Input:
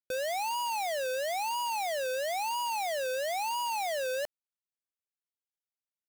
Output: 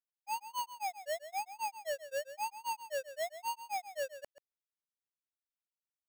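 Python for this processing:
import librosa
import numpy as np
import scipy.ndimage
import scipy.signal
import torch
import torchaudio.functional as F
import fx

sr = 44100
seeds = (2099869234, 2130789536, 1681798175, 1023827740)

p1 = fx.doppler_pass(x, sr, speed_mps=14, closest_m=16.0, pass_at_s=2.57)
p2 = fx.rider(p1, sr, range_db=10, speed_s=0.5)
p3 = fx.granulator(p2, sr, seeds[0], grain_ms=140.0, per_s=3.8, spray_ms=100.0, spread_st=0)
p4 = np.repeat(scipy.signal.resample_poly(p3, 1, 6), 6)[:len(p3)]
p5 = p4 + fx.echo_single(p4, sr, ms=135, db=-12.5, dry=0)
y = p5 * 10.0 ** (2.0 / 20.0)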